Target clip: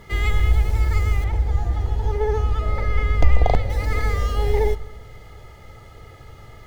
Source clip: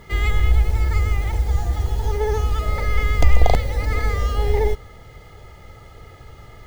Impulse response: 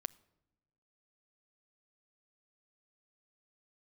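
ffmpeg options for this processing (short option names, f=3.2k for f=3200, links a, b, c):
-filter_complex "[0:a]asettb=1/sr,asplit=3[a][b][c];[a]atrim=end=1.244[d];[b]atrim=start=1.24:end=3.7,asetpts=PTS-STARTPTS,afade=t=in:d=0.004:c=qsin,afade=t=out:st=2.456:d=0.004:c=qsin,lowpass=f=2.3k:p=1[e];[c]atrim=start=3.696[f];[d][e]acrossfade=d=0.004:c1=hsin:c2=qsin[g];[g][f]acrossfade=d=0.004:c1=qsin:c2=hsin[h];[1:a]atrim=start_sample=2205,asetrate=32193,aresample=44100[i];[h][i]afir=irnorm=-1:irlink=0"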